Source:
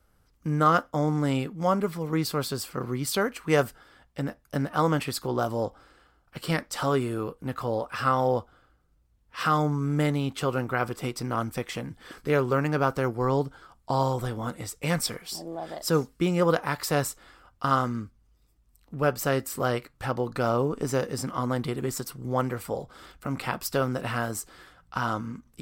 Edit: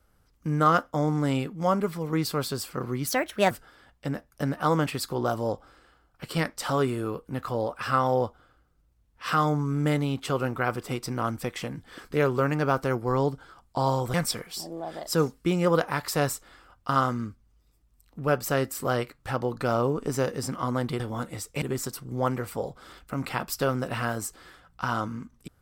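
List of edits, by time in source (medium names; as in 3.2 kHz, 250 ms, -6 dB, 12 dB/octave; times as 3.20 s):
3.07–3.64 s: speed 130%
14.27–14.89 s: move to 21.75 s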